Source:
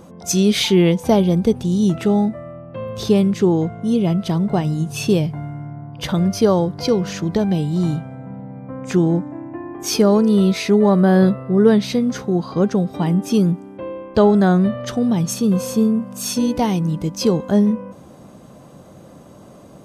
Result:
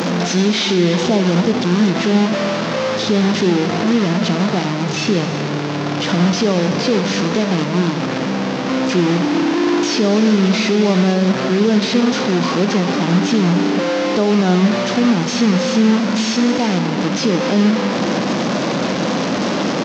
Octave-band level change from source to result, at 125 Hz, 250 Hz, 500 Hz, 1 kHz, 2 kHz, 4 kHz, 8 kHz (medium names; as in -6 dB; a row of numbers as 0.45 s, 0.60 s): +0.5 dB, +2.5 dB, +1.5 dB, +5.5 dB, +10.5 dB, +7.5 dB, +2.0 dB